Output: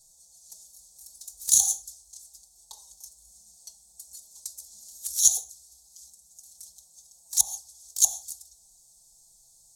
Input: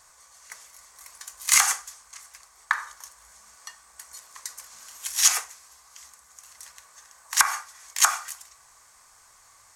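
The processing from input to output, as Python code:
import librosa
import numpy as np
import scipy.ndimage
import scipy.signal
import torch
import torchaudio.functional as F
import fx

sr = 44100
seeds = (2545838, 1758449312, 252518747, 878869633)

y = scipy.signal.sosfilt(scipy.signal.ellip(3, 1.0, 40, [790.0, 3700.0], 'bandstop', fs=sr, output='sos'), x)
y = fx.bass_treble(y, sr, bass_db=13, treble_db=13)
y = fx.env_flanger(y, sr, rest_ms=6.5, full_db=-13.0)
y = F.gain(torch.from_numpy(y), -8.5).numpy()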